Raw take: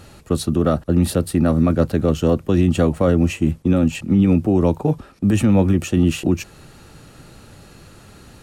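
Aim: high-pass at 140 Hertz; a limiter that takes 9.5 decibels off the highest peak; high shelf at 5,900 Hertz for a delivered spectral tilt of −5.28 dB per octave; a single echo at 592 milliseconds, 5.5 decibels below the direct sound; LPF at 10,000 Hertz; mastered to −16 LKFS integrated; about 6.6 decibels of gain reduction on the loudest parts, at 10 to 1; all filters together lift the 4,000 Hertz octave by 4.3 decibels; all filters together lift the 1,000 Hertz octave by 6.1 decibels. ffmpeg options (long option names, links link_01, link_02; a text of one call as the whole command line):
ffmpeg -i in.wav -af "highpass=140,lowpass=10000,equalizer=frequency=1000:width_type=o:gain=8,equalizer=frequency=4000:width_type=o:gain=7.5,highshelf=frequency=5900:gain=-7,acompressor=threshold=-18dB:ratio=10,alimiter=limit=-17.5dB:level=0:latency=1,aecho=1:1:592:0.531,volume=11dB" out.wav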